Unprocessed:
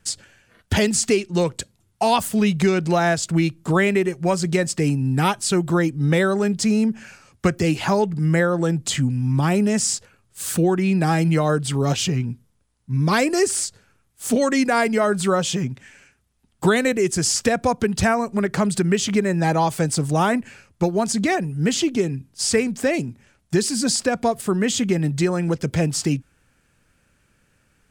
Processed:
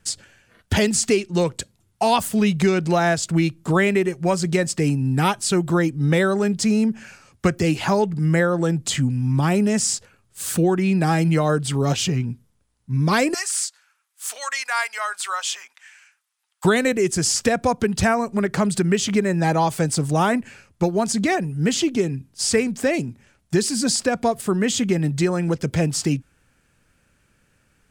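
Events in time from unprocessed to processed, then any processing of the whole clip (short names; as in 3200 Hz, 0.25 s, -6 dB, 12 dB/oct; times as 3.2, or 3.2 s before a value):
13.34–16.65 HPF 970 Hz 24 dB/oct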